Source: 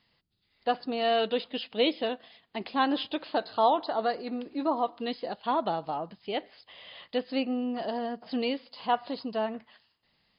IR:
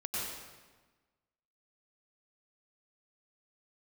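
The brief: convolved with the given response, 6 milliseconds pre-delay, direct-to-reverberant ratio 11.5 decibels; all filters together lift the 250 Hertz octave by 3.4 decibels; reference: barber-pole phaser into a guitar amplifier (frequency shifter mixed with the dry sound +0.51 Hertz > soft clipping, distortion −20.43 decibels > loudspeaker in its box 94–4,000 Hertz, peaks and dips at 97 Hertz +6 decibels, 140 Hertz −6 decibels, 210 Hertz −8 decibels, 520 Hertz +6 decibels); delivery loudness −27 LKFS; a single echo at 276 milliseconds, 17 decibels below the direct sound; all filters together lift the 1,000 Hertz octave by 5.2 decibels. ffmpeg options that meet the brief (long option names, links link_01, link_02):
-filter_complex "[0:a]equalizer=frequency=250:width_type=o:gain=6,equalizer=frequency=1000:width_type=o:gain=6,aecho=1:1:276:0.141,asplit=2[link_01][link_02];[1:a]atrim=start_sample=2205,adelay=6[link_03];[link_02][link_03]afir=irnorm=-1:irlink=0,volume=-15.5dB[link_04];[link_01][link_04]amix=inputs=2:normalize=0,asplit=2[link_05][link_06];[link_06]afreqshift=0.51[link_07];[link_05][link_07]amix=inputs=2:normalize=1,asoftclip=threshold=-15.5dB,highpass=94,equalizer=frequency=97:width_type=q:width=4:gain=6,equalizer=frequency=140:width_type=q:width=4:gain=-6,equalizer=frequency=210:width_type=q:width=4:gain=-8,equalizer=frequency=520:width_type=q:width=4:gain=6,lowpass=frequency=4000:width=0.5412,lowpass=frequency=4000:width=1.3066,volume=3dB"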